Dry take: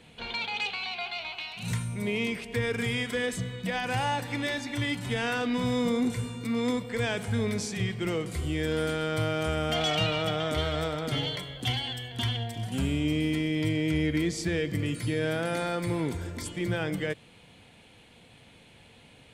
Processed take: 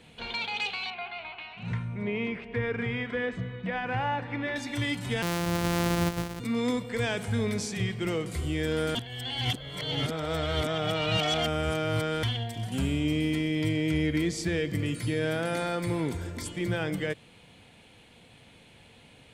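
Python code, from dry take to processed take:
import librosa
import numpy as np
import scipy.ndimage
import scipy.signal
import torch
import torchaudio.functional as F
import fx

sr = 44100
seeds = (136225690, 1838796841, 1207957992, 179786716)

y = fx.cheby1_lowpass(x, sr, hz=1900.0, order=2, at=(0.9, 4.56))
y = fx.sample_sort(y, sr, block=256, at=(5.22, 6.4))
y = fx.edit(y, sr, fx.reverse_span(start_s=8.95, length_s=3.28), tone=tone)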